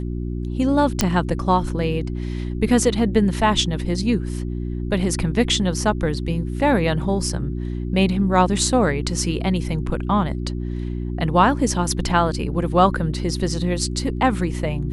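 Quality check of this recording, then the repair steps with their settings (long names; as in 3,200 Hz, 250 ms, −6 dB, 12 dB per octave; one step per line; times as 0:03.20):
mains hum 60 Hz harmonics 6 −26 dBFS
0:01.01: click −2 dBFS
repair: click removal
hum removal 60 Hz, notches 6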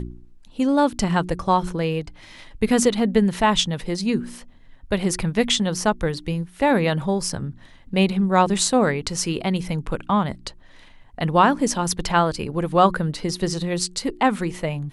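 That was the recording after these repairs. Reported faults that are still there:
none of them is left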